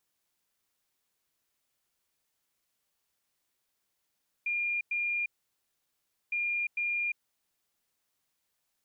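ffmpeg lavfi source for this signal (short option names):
-f lavfi -i "aevalsrc='0.0398*sin(2*PI*2410*t)*clip(min(mod(mod(t,1.86),0.45),0.35-mod(mod(t,1.86),0.45))/0.005,0,1)*lt(mod(t,1.86),0.9)':d=3.72:s=44100"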